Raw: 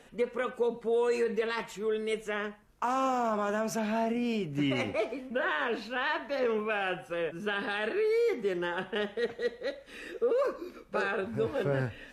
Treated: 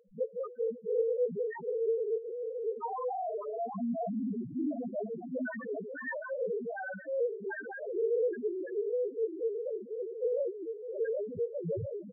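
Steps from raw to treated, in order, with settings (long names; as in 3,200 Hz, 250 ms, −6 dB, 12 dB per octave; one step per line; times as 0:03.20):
bouncing-ball delay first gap 770 ms, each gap 0.9×, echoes 5
ring modulation 25 Hz
spectral peaks only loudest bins 1
level +8.5 dB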